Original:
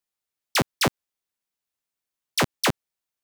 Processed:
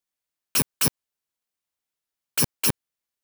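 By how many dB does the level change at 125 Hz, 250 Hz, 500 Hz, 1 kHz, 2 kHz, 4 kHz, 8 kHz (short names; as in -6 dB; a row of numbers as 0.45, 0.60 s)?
-1.0, -2.5, -7.5, -9.5, -6.5, -3.0, +5.5 dB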